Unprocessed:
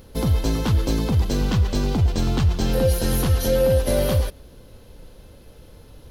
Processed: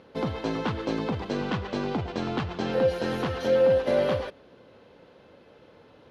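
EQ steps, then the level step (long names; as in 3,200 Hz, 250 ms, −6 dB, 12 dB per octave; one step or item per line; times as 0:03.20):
band-pass filter 140–2,500 Hz
low-shelf EQ 240 Hz −11 dB
+1.0 dB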